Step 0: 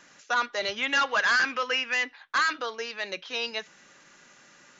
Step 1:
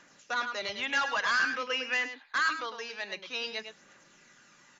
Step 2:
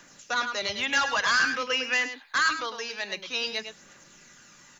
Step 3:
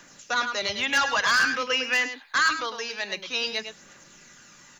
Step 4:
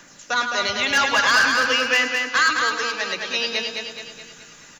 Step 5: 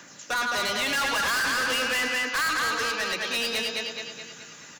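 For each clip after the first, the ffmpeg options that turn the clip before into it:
-filter_complex "[0:a]asplit=2[a][b];[b]adelay=105,volume=-8dB,highshelf=f=4k:g=-2.36[c];[a][c]amix=inputs=2:normalize=0,aphaser=in_gain=1:out_gain=1:delay=1.3:decay=0.32:speed=0.51:type=triangular,volume=-5dB"
-filter_complex "[0:a]lowshelf=f=110:g=11.5,acrossover=split=180|2100[a][b][c];[c]crystalizer=i=1.5:c=0[d];[a][b][d]amix=inputs=3:normalize=0,volume=3.5dB"
-af "asoftclip=type=hard:threshold=-16.5dB,volume=2dB"
-af "aecho=1:1:212|424|636|848|1060|1272:0.596|0.298|0.149|0.0745|0.0372|0.0186,volume=3.5dB"
-af "highpass=91,asoftclip=type=hard:threshold=-24dB"

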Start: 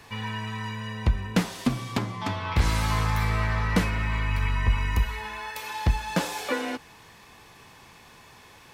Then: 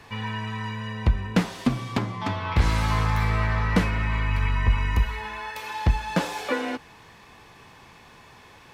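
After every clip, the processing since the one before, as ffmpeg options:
-af "highshelf=f=5.7k:g=-9,volume=2dB"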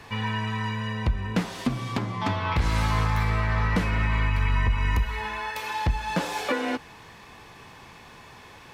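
-af "alimiter=limit=-17dB:level=0:latency=1:release=206,volume=2.5dB"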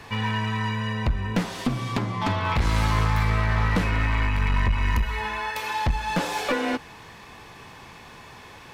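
-af "aeval=exprs='clip(val(0),-1,0.0708)':c=same,volume=2.5dB"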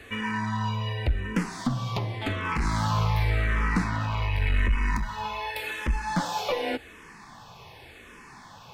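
-filter_complex "[0:a]asplit=2[a][b];[b]afreqshift=-0.88[c];[a][c]amix=inputs=2:normalize=1"

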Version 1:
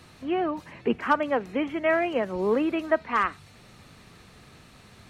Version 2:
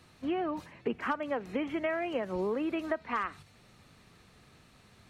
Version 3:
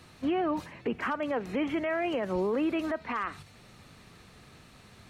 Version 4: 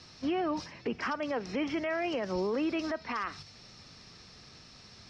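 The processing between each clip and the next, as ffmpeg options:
-af "agate=range=-8dB:threshold=-41dB:ratio=16:detection=peak,acompressor=threshold=-29dB:ratio=6"
-af "alimiter=level_in=3.5dB:limit=-24dB:level=0:latency=1:release=11,volume=-3.5dB,volume=5.5dB"
-af "lowpass=f=5.3k:t=q:w=9.6,volume=-2.5dB"

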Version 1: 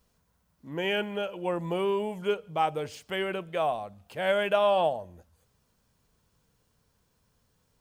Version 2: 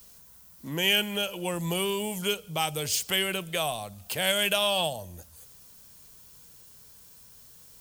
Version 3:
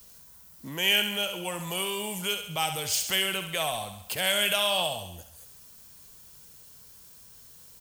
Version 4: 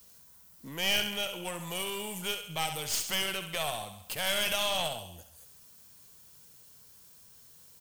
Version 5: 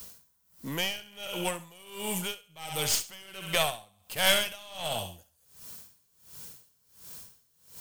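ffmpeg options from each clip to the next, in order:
-filter_complex "[0:a]acrossover=split=170|3000[a][b][c];[b]acompressor=threshold=-48dB:ratio=2[d];[a][d][c]amix=inputs=3:normalize=0,crystalizer=i=4.5:c=0,volume=7.5dB"
-filter_complex "[0:a]acrossover=split=600[a][b];[a]alimiter=level_in=9.5dB:limit=-24dB:level=0:latency=1,volume=-9.5dB[c];[b]aecho=1:1:68|136|204|272|340|408|476:0.422|0.228|0.123|0.0664|0.0359|0.0194|0.0105[d];[c][d]amix=inputs=2:normalize=0"
-af "highpass=63,aeval=exprs='(tanh(11.2*val(0)+0.75)-tanh(0.75))/11.2':c=same"
-af "areverse,acompressor=mode=upward:threshold=-45dB:ratio=2.5,areverse,aeval=exprs='val(0)*pow(10,-26*(0.5-0.5*cos(2*PI*1.4*n/s))/20)':c=same,volume=8dB"

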